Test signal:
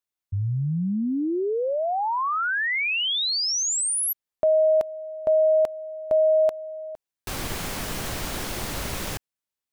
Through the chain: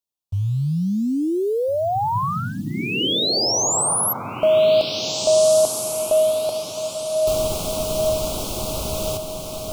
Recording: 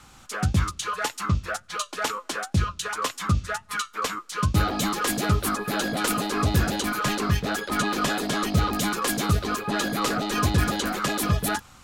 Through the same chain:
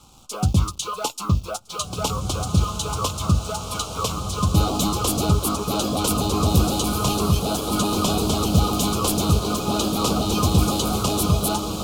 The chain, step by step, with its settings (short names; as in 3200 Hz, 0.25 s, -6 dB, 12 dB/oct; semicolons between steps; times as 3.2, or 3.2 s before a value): in parallel at -5.5 dB: bit-crush 7-bit; on the sum: Butterworth band-stop 1800 Hz, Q 1.1; diffused feedback echo 1.84 s, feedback 40%, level -5 dB